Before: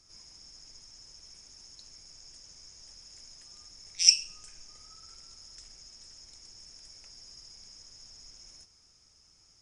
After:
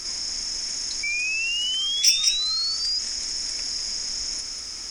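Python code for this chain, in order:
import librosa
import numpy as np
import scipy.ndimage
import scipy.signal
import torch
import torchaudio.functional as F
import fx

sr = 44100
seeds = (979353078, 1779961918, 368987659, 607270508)

p1 = fx.stretch_vocoder(x, sr, factor=0.51)
p2 = fx.graphic_eq(p1, sr, hz=(125, 250, 2000), db=(-8, 5, 7))
p3 = p2 + fx.echo_single(p2, sr, ms=195, db=-10.0, dry=0)
p4 = 10.0 ** (-20.0 / 20.0) * np.tanh(p3 / 10.0 ** (-20.0 / 20.0))
p5 = fx.spec_paint(p4, sr, seeds[0], shape='rise', start_s=1.03, length_s=1.96, low_hz=2300.0, high_hz=5000.0, level_db=-43.0)
p6 = fx.bass_treble(p5, sr, bass_db=-2, treble_db=6)
p7 = fx.notch(p6, sr, hz=4600.0, q=19.0)
p8 = fx.env_flatten(p7, sr, amount_pct=50)
y = p8 * 10.0 ** (4.5 / 20.0)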